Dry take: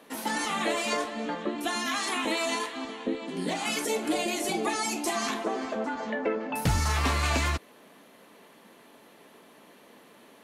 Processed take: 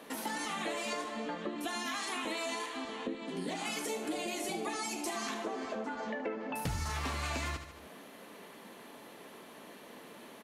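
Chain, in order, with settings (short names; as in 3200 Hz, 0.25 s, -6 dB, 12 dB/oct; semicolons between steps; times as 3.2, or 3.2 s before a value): feedback echo 74 ms, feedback 43%, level -11 dB; compressor 2.5:1, threshold -42 dBFS, peak gain reduction 14 dB; gain +2.5 dB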